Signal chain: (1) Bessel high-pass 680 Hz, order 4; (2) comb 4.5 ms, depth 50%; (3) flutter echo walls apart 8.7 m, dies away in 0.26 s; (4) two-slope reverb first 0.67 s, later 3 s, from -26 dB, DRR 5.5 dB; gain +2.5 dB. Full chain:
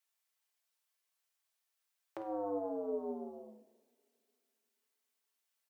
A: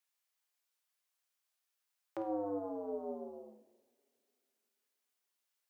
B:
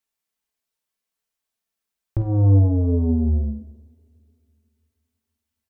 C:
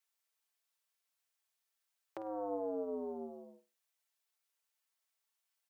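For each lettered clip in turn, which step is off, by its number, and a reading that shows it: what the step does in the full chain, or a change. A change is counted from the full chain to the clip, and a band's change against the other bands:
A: 2, momentary loudness spread change -2 LU; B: 1, loudness change +20.0 LU; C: 4, echo-to-direct -4.5 dB to -11.5 dB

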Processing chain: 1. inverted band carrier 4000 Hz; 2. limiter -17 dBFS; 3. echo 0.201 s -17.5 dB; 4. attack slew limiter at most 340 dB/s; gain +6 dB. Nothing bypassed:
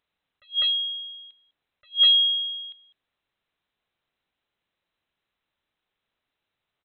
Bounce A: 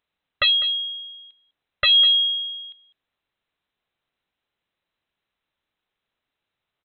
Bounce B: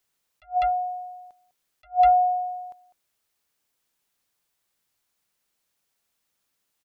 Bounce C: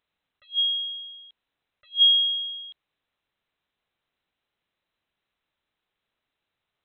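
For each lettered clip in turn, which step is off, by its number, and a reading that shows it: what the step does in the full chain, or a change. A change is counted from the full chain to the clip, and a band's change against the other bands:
4, crest factor change -3.5 dB; 1, loudness change -3.0 LU; 3, loudness change -1.0 LU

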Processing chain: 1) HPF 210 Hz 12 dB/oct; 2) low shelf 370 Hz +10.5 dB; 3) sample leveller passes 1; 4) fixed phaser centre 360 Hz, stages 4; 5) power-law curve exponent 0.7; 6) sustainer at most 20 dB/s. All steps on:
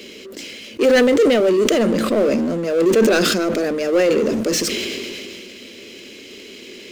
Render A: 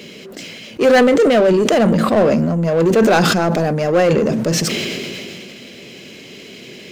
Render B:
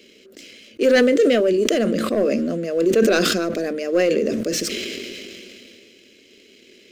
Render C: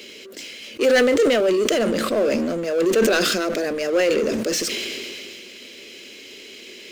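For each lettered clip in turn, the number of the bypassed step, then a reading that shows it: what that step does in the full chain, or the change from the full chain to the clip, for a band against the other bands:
4, 125 Hz band +9.0 dB; 5, crest factor change +2.5 dB; 2, 125 Hz band -4.5 dB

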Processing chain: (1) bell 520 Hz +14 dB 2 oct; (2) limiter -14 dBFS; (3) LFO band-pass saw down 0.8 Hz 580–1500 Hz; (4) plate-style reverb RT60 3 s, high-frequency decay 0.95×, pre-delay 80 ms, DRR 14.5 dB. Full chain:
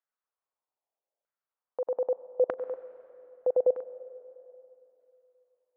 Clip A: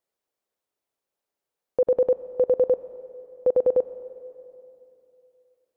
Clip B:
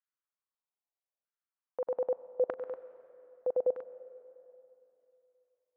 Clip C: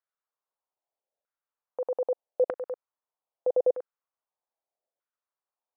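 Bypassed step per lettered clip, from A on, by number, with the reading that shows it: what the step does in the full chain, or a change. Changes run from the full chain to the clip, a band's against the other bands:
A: 3, crest factor change -4.5 dB; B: 1, loudness change -4.5 LU; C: 4, momentary loudness spread change -7 LU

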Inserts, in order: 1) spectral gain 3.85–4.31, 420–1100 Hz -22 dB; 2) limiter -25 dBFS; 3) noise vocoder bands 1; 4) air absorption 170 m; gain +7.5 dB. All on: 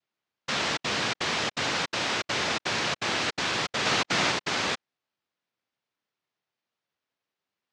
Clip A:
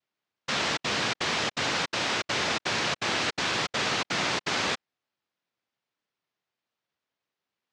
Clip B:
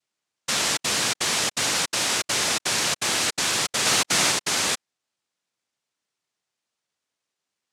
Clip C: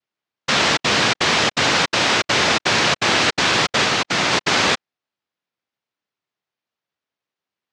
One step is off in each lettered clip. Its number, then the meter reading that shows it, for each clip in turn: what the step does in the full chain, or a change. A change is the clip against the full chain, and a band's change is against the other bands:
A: 1, crest factor change -2.0 dB; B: 4, 8 kHz band +12.5 dB; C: 2, mean gain reduction 10.0 dB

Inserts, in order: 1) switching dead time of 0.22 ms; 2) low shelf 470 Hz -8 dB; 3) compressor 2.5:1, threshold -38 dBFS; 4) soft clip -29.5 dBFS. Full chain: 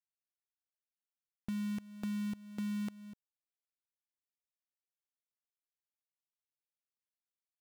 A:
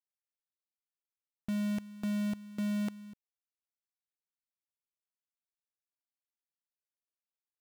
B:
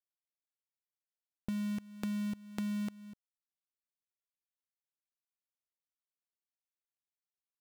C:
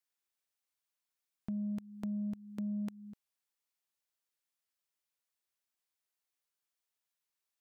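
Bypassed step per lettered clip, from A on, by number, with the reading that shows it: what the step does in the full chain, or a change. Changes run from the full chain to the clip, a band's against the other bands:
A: 3, mean gain reduction 6.0 dB; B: 4, distortion -22 dB; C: 1, distortion -23 dB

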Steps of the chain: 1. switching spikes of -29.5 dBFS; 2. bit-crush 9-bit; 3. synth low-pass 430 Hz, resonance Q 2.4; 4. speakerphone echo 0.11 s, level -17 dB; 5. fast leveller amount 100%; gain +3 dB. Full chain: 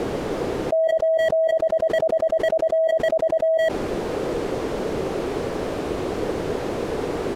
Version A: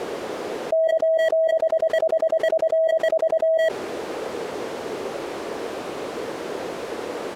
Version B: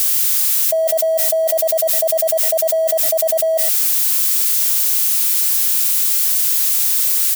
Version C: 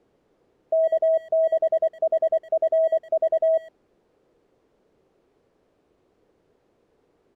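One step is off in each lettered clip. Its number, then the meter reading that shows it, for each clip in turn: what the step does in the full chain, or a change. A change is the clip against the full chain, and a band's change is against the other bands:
2, 250 Hz band -6.5 dB; 3, 4 kHz band +13.0 dB; 5, momentary loudness spread change -4 LU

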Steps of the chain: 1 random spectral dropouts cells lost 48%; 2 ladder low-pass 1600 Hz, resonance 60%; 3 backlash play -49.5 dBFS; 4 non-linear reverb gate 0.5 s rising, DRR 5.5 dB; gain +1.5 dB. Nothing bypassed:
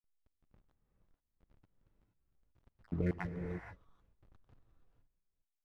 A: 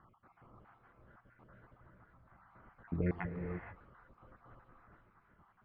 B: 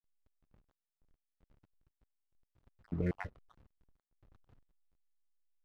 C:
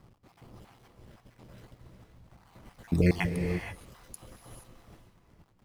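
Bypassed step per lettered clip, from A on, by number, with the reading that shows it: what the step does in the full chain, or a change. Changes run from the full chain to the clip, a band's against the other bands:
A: 3, distortion -15 dB; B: 4, momentary loudness spread change -1 LU; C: 2, 1 kHz band -2.5 dB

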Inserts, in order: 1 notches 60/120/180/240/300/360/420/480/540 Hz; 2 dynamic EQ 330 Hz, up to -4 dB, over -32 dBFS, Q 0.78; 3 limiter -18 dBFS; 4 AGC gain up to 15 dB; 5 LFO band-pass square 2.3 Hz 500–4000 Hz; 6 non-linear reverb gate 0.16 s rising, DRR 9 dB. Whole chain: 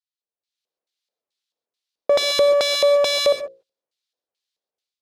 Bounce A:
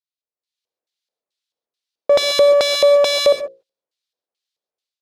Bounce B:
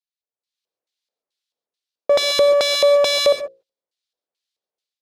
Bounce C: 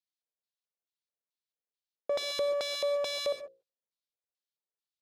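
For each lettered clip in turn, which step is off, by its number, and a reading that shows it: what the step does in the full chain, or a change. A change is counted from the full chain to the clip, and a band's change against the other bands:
2, 500 Hz band +2.0 dB; 3, mean gain reduction 4.5 dB; 4, loudness change -14.0 LU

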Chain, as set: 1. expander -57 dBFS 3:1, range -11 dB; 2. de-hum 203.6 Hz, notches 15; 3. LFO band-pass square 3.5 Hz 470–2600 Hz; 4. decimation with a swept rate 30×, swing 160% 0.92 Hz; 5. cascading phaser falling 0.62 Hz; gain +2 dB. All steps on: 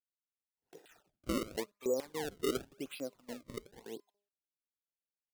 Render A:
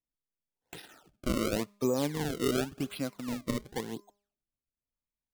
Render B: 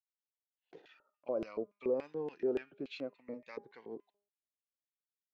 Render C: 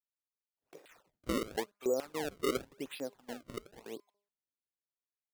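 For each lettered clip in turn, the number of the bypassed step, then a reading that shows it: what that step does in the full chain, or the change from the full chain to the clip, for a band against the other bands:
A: 3, 125 Hz band +7.0 dB; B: 4, crest factor change -2.0 dB; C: 5, 1 kHz band +3.0 dB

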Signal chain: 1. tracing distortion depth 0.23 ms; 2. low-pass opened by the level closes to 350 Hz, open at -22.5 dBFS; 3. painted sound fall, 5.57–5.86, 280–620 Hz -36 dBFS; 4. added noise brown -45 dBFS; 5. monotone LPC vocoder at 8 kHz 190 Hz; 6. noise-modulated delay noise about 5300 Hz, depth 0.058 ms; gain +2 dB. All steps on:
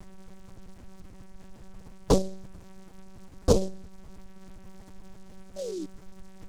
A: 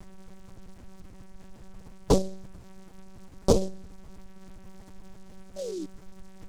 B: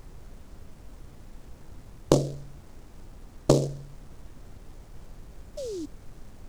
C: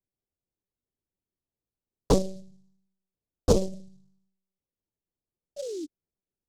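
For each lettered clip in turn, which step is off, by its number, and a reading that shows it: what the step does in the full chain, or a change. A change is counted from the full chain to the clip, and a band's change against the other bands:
2, crest factor change +1.5 dB; 5, 125 Hz band +3.0 dB; 4, 2 kHz band -1.5 dB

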